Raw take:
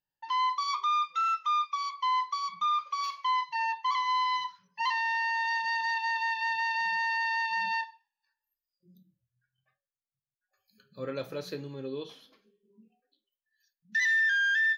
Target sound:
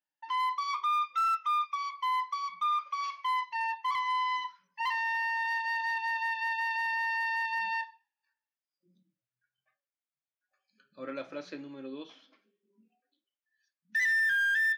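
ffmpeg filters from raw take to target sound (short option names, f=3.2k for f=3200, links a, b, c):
-af "highpass=280,equalizer=f=290:t=q:w=4:g=8,equalizer=f=440:t=q:w=4:g=-9,equalizer=f=630:t=q:w=4:g=4,equalizer=f=1.4k:t=q:w=4:g=4,equalizer=f=2.2k:t=q:w=4:g=5,equalizer=f=4.2k:t=q:w=4:g=-6,lowpass=f=6k:w=0.5412,lowpass=f=6k:w=1.3066,aeval=exprs='0.0841*(cos(1*acos(clip(val(0)/0.0841,-1,1)))-cos(1*PI/2))+0.0015*(cos(5*acos(clip(val(0)/0.0841,-1,1)))-cos(5*PI/2))+0.00119*(cos(7*acos(clip(val(0)/0.0841,-1,1)))-cos(7*PI/2))':c=same,volume=-3dB"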